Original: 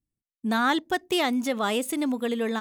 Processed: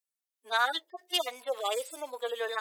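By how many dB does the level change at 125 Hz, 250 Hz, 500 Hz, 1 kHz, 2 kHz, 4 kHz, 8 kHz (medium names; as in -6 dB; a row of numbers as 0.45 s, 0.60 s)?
no reading, -26.5 dB, -5.5 dB, -5.0 dB, -4.0 dB, -1.0 dB, -5.0 dB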